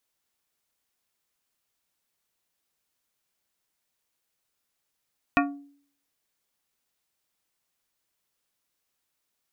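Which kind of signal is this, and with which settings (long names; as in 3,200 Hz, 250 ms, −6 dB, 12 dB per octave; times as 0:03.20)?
struck glass plate, lowest mode 283 Hz, modes 7, decay 0.56 s, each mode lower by 1 dB, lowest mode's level −19 dB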